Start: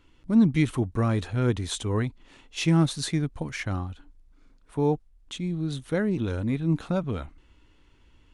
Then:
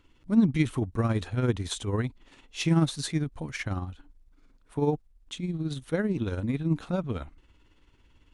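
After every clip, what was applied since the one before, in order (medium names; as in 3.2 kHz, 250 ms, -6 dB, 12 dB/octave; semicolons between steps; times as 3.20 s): tremolo 18 Hz, depth 49%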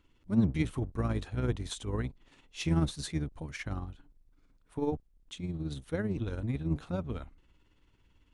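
octave divider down 1 oct, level -4 dB; trim -6 dB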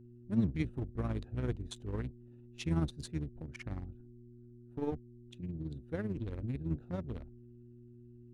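local Wiener filter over 41 samples; mains buzz 120 Hz, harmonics 3, -51 dBFS -3 dB/octave; trim -4 dB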